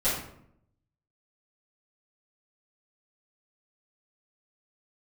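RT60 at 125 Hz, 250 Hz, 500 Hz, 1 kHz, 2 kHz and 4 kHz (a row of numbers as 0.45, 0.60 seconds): 1.1, 0.90, 0.75, 0.65, 0.55, 0.45 seconds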